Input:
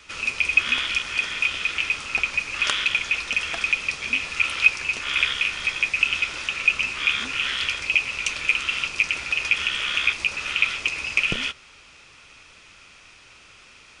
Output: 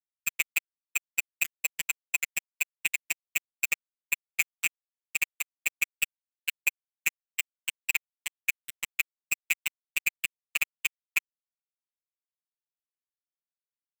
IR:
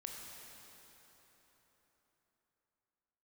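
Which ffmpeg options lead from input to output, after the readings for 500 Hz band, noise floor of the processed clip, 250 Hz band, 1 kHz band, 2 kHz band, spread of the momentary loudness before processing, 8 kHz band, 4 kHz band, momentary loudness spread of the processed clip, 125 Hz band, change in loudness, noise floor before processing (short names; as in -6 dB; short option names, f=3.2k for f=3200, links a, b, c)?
under -15 dB, under -85 dBFS, under -15 dB, -17.0 dB, -9.5 dB, 5 LU, +2.5 dB, -15.0 dB, 5 LU, under -15 dB, -9.0 dB, -50 dBFS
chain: -filter_complex "[0:a]afftfilt=real='re*gte(hypot(re,im),0.316)':imag='im*gte(hypot(re,im),0.316)':win_size=1024:overlap=0.75,asplit=2[a][b];[b]adelay=73,lowpass=f=5k:p=1,volume=-8.5dB,asplit=2[c][d];[d]adelay=73,lowpass=f=5k:p=1,volume=0.51,asplit=2[e][f];[f]adelay=73,lowpass=f=5k:p=1,volume=0.51,asplit=2[g][h];[h]adelay=73,lowpass=f=5k:p=1,volume=0.51,asplit=2[i][j];[j]adelay=73,lowpass=f=5k:p=1,volume=0.51,asplit=2[k][l];[l]adelay=73,lowpass=f=5k:p=1,volume=0.51[m];[a][c][e][g][i][k][m]amix=inputs=7:normalize=0,acompressor=threshold=-29dB:ratio=16,equalizer=f=1.2k:w=0.66:g=9,afftfilt=real='re*(1-between(b*sr/4096,430,1900))':imag='im*(1-between(b*sr/4096,430,1900))':win_size=4096:overlap=0.75,flanger=delay=6.4:depth=7.8:regen=-87:speed=1.4:shape=triangular,acrusher=bits=3:mix=0:aa=0.000001,adynamicequalizer=threshold=0.00355:dfrequency=2100:dqfactor=6:tfrequency=2100:tqfactor=6:attack=5:release=100:ratio=0.375:range=2:mode=boostabove:tftype=bell,afftfilt=real='hypot(re,im)*cos(PI*b)':imag='0':win_size=1024:overlap=0.75,volume=8dB"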